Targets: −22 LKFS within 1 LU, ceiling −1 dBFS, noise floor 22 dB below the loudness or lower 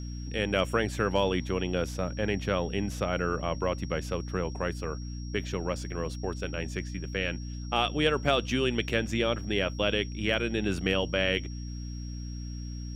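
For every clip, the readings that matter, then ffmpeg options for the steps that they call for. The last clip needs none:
mains hum 60 Hz; hum harmonics up to 300 Hz; level of the hum −34 dBFS; interfering tone 5,600 Hz; level of the tone −49 dBFS; integrated loudness −30.0 LKFS; sample peak −11.5 dBFS; target loudness −22.0 LKFS
→ -af "bandreject=frequency=60:width_type=h:width=6,bandreject=frequency=120:width_type=h:width=6,bandreject=frequency=180:width_type=h:width=6,bandreject=frequency=240:width_type=h:width=6,bandreject=frequency=300:width_type=h:width=6"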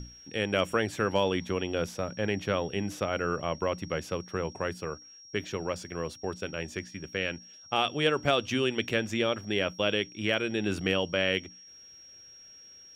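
mains hum none found; interfering tone 5,600 Hz; level of the tone −49 dBFS
→ -af "bandreject=frequency=5600:width=30"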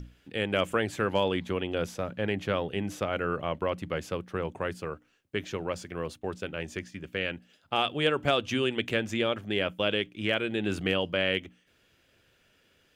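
interfering tone none found; integrated loudness −30.5 LKFS; sample peak −12.0 dBFS; target loudness −22.0 LKFS
→ -af "volume=8.5dB"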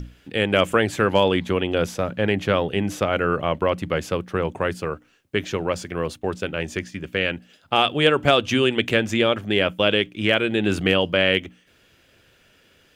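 integrated loudness −22.0 LKFS; sample peak −3.5 dBFS; background noise floor −58 dBFS

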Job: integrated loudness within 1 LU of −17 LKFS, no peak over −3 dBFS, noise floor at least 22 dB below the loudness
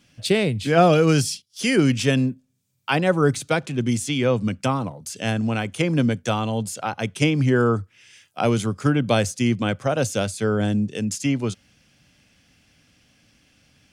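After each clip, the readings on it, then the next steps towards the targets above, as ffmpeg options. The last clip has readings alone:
integrated loudness −22.0 LKFS; sample peak −4.0 dBFS; target loudness −17.0 LKFS
→ -af "volume=5dB,alimiter=limit=-3dB:level=0:latency=1"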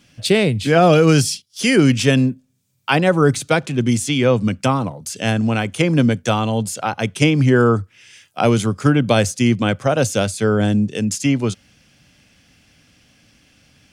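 integrated loudness −17.0 LKFS; sample peak −3.0 dBFS; background noise floor −57 dBFS

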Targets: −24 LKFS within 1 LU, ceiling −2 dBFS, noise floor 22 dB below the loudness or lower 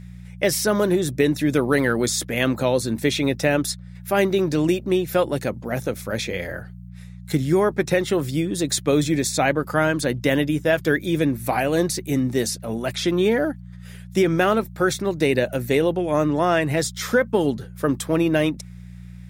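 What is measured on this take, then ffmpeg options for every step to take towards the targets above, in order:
mains hum 60 Hz; hum harmonics up to 180 Hz; level of the hum −37 dBFS; integrated loudness −21.5 LKFS; sample peak −6.5 dBFS; target loudness −24.0 LKFS
→ -af "bandreject=frequency=60:width_type=h:width=4,bandreject=frequency=120:width_type=h:width=4,bandreject=frequency=180:width_type=h:width=4"
-af "volume=-2.5dB"

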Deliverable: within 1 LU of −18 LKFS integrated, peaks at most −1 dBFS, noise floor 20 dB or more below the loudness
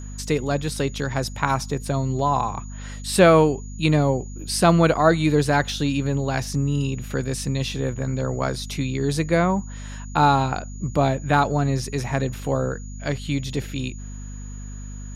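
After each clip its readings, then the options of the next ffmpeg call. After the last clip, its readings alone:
mains hum 50 Hz; hum harmonics up to 250 Hz; level of the hum −32 dBFS; interfering tone 6,800 Hz; level of the tone −45 dBFS; integrated loudness −22.5 LKFS; sample peak −3.0 dBFS; target loudness −18.0 LKFS
→ -af "bandreject=frequency=50:width_type=h:width=4,bandreject=frequency=100:width_type=h:width=4,bandreject=frequency=150:width_type=h:width=4,bandreject=frequency=200:width_type=h:width=4,bandreject=frequency=250:width_type=h:width=4"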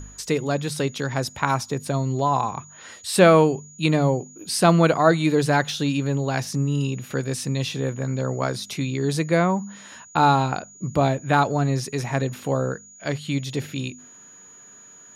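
mains hum none found; interfering tone 6,800 Hz; level of the tone −45 dBFS
→ -af "bandreject=frequency=6800:width=30"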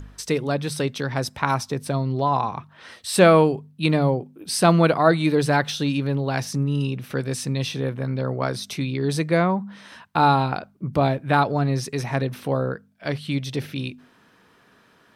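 interfering tone none found; integrated loudness −22.5 LKFS; sample peak −3.0 dBFS; target loudness −18.0 LKFS
→ -af "volume=4.5dB,alimiter=limit=-1dB:level=0:latency=1"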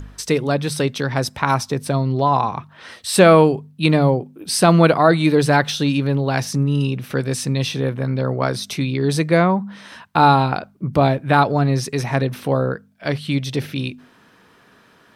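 integrated loudness −18.5 LKFS; sample peak −1.0 dBFS; background noise floor −53 dBFS

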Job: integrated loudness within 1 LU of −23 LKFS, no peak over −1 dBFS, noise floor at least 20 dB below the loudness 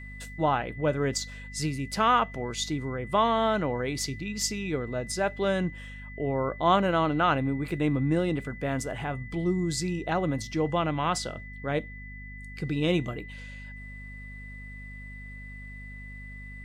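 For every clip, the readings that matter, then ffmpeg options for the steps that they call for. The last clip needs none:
mains hum 50 Hz; hum harmonics up to 250 Hz; level of the hum −41 dBFS; interfering tone 2,000 Hz; level of the tone −44 dBFS; integrated loudness −28.0 LKFS; sample peak −11.0 dBFS; target loudness −23.0 LKFS
→ -af "bandreject=frequency=50:width_type=h:width=4,bandreject=frequency=100:width_type=h:width=4,bandreject=frequency=150:width_type=h:width=4,bandreject=frequency=200:width_type=h:width=4,bandreject=frequency=250:width_type=h:width=4"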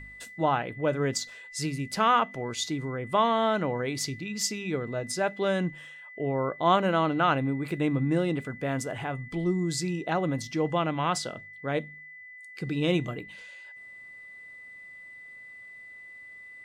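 mains hum none found; interfering tone 2,000 Hz; level of the tone −44 dBFS
→ -af "bandreject=frequency=2000:width=30"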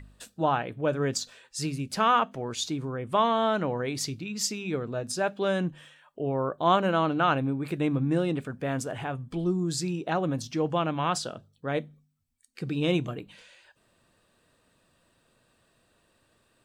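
interfering tone none found; integrated loudness −28.5 LKFS; sample peak −11.0 dBFS; target loudness −23.0 LKFS
→ -af "volume=5.5dB"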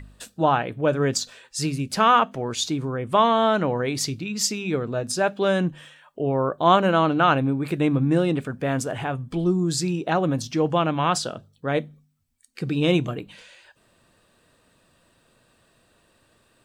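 integrated loudness −23.0 LKFS; sample peak −5.5 dBFS; background noise floor −63 dBFS

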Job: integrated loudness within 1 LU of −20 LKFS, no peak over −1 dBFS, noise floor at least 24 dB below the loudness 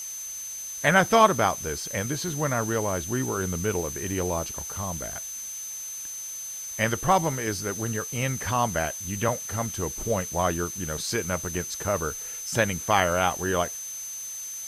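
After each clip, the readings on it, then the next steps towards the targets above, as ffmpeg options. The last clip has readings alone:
interfering tone 6,200 Hz; level of the tone −34 dBFS; background noise floor −36 dBFS; target noise floor −51 dBFS; integrated loudness −26.5 LKFS; sample peak −4.5 dBFS; target loudness −20.0 LKFS
→ -af "bandreject=frequency=6200:width=30"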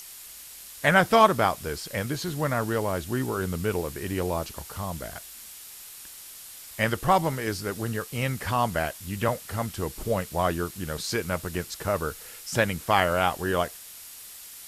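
interfering tone none found; background noise floor −44 dBFS; target noise floor −51 dBFS
→ -af "afftdn=noise_reduction=7:noise_floor=-44"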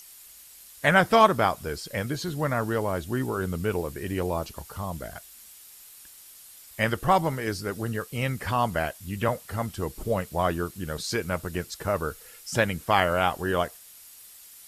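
background noise floor −49 dBFS; target noise floor −51 dBFS
→ -af "afftdn=noise_reduction=6:noise_floor=-49"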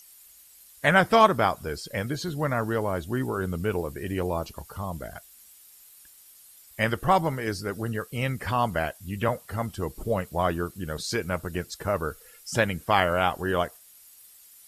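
background noise floor −53 dBFS; integrated loudness −27.0 LKFS; sample peak −4.5 dBFS; target loudness −20.0 LKFS
→ -af "volume=7dB,alimiter=limit=-1dB:level=0:latency=1"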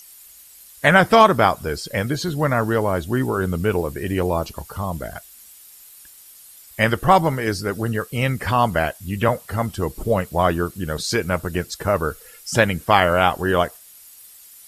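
integrated loudness −20.5 LKFS; sample peak −1.0 dBFS; background noise floor −46 dBFS

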